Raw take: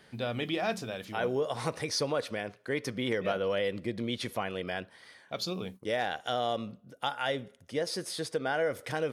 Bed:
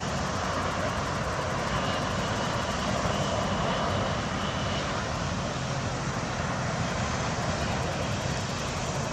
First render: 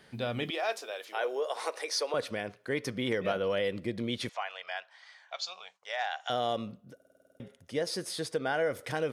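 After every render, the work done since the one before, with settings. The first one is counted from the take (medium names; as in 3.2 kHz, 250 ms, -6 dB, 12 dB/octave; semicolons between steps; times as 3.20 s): 0.50–2.14 s: inverse Chebyshev high-pass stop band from 160 Hz, stop band 50 dB; 4.29–6.30 s: elliptic band-pass 720–7100 Hz; 6.95 s: stutter in place 0.05 s, 9 plays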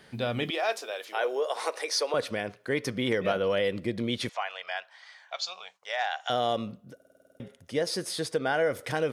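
trim +3.5 dB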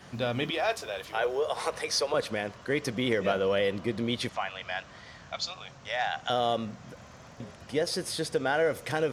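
add bed -21 dB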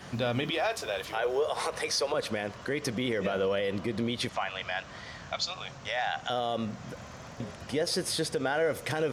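in parallel at -3 dB: compression, threshold -36 dBFS, peak gain reduction 13.5 dB; on the sum: peak limiter -20 dBFS, peak gain reduction 8 dB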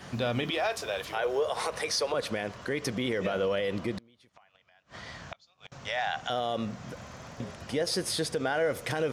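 3.97–5.72 s: inverted gate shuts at -27 dBFS, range -30 dB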